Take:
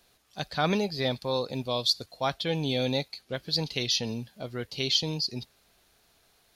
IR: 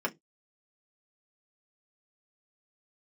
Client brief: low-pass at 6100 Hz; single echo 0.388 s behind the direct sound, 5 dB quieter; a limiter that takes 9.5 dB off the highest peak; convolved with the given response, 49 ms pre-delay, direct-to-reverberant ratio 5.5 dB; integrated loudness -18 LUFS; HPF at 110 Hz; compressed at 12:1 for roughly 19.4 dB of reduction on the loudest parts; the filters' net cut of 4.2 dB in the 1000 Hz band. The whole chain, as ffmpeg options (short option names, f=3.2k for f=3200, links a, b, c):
-filter_complex "[0:a]highpass=110,lowpass=6.1k,equalizer=f=1k:t=o:g=-6,acompressor=threshold=-41dB:ratio=12,alimiter=level_in=11dB:limit=-24dB:level=0:latency=1,volume=-11dB,aecho=1:1:388:0.562,asplit=2[a][b];[1:a]atrim=start_sample=2205,adelay=49[c];[b][c]afir=irnorm=-1:irlink=0,volume=-13dB[d];[a][d]amix=inputs=2:normalize=0,volume=27dB"